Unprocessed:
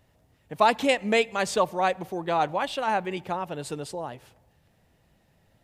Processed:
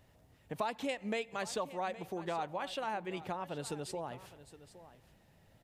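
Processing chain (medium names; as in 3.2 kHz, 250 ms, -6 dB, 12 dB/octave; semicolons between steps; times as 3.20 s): compression 3:1, threshold -37 dBFS, peak gain reduction 16 dB; delay 816 ms -16 dB; trim -1 dB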